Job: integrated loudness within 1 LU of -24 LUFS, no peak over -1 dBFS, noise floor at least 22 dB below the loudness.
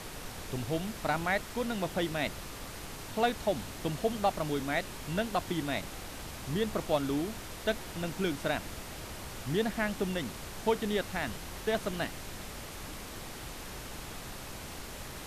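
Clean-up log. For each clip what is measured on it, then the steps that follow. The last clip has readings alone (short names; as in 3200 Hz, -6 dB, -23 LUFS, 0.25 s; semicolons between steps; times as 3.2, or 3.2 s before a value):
noise floor -44 dBFS; noise floor target -57 dBFS; loudness -34.5 LUFS; peak -16.5 dBFS; loudness target -24.0 LUFS
-> noise print and reduce 13 dB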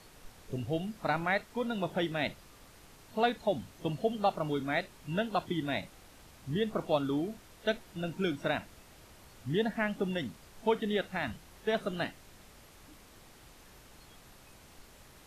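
noise floor -57 dBFS; loudness -34.0 LUFS; peak -16.5 dBFS; loudness target -24.0 LUFS
-> gain +10 dB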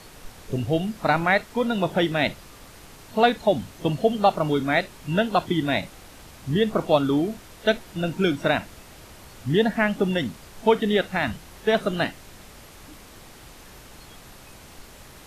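loudness -24.0 LUFS; peak -6.5 dBFS; noise floor -47 dBFS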